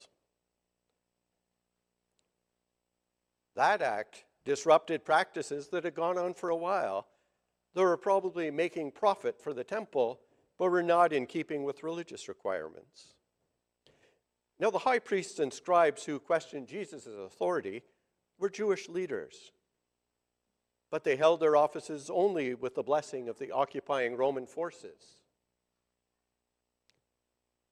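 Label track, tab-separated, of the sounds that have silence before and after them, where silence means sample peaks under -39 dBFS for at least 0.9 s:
3.570000	12.780000	sound
14.600000	19.240000	sound
20.930000	24.860000	sound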